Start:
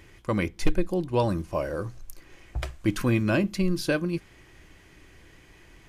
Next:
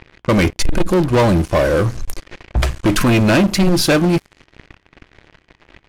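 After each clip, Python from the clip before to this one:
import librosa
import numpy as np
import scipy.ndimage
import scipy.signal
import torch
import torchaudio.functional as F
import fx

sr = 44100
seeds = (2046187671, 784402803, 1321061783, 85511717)

y = fx.leveller(x, sr, passes=5)
y = fx.env_lowpass(y, sr, base_hz=2900.0, full_db=-14.5)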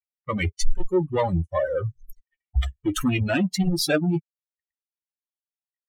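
y = fx.bin_expand(x, sr, power=3.0)
y = fx.chorus_voices(y, sr, voices=6, hz=0.87, base_ms=12, depth_ms=1.2, mix_pct=25)
y = y * librosa.db_to_amplitude(-1.0)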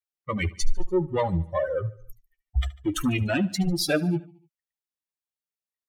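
y = fx.echo_feedback(x, sr, ms=73, feedback_pct=53, wet_db=-20.5)
y = y * librosa.db_to_amplitude(-2.0)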